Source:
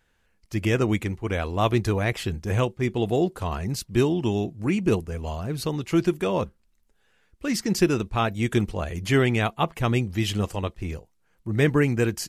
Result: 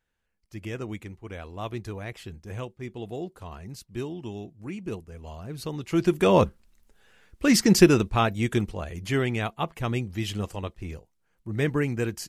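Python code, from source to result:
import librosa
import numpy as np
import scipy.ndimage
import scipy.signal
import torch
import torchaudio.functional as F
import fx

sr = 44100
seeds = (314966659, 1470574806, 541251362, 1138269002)

y = fx.gain(x, sr, db=fx.line((5.06, -12.0), (5.93, -3.5), (6.32, 6.5), (7.67, 6.5), (8.83, -5.0)))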